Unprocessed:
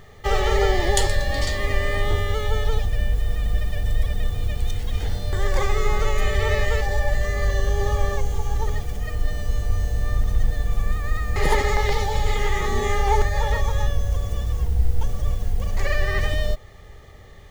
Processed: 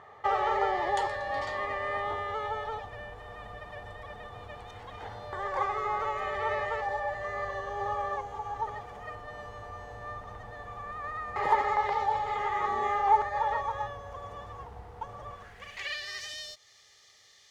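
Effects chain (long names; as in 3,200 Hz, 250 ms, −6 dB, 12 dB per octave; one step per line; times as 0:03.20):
parametric band 110 Hz +8.5 dB 0.29 octaves
in parallel at +1.5 dB: downward compressor, threshold −25 dBFS, peak gain reduction 13 dB
on the sum: band-pass filter sweep 980 Hz → 5,300 Hz, 0:15.28–0:16.13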